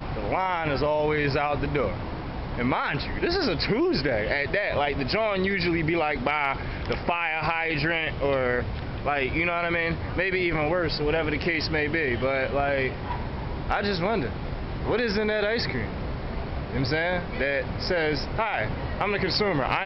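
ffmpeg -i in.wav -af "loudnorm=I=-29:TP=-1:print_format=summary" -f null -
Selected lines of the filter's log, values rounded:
Input Integrated:    -26.0 LUFS
Input True Peak:     -11.5 dBTP
Input LRA:             2.3 LU
Input Threshold:     -36.0 LUFS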